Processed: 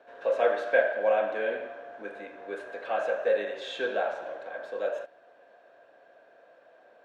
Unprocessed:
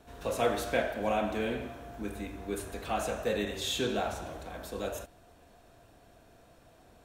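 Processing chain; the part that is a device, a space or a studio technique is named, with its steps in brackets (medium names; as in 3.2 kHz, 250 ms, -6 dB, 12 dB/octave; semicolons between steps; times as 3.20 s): tin-can telephone (band-pass 480–2700 Hz; small resonant body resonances 550/1600 Hz, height 12 dB, ringing for 25 ms)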